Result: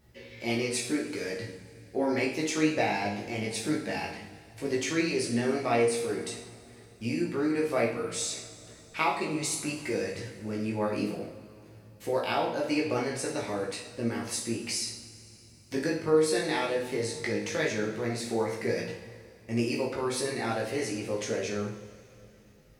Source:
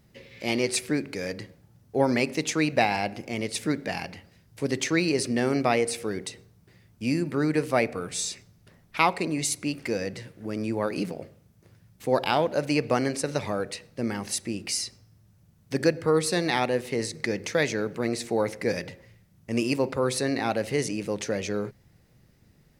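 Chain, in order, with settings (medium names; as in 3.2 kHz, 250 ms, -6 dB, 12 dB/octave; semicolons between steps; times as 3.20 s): compression 1.5:1, threshold -33 dBFS, peak gain reduction 6.5 dB; chorus 0.15 Hz, delay 16.5 ms, depth 2.9 ms; two-slope reverb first 0.57 s, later 3.2 s, from -18 dB, DRR -2 dB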